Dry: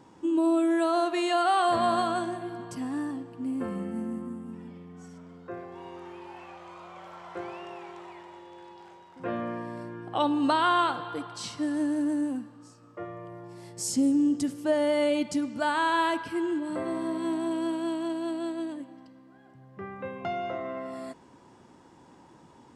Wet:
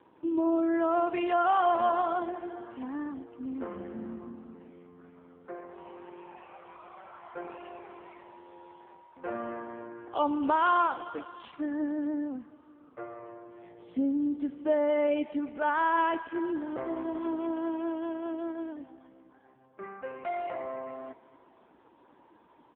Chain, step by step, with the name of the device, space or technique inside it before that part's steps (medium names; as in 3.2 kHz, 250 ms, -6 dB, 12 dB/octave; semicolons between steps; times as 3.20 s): satellite phone (band-pass 310–3100 Hz; delay 576 ms -24 dB; AMR-NB 5.15 kbps 8 kHz)